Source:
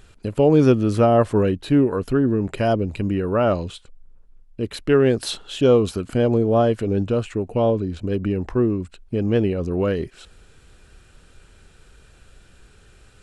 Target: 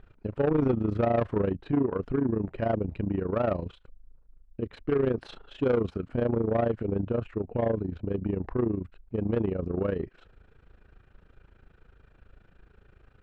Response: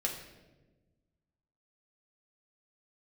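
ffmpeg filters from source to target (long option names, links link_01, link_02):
-af "tremolo=f=27:d=0.824,lowpass=1800,asoftclip=type=tanh:threshold=-15.5dB,volume=-2.5dB"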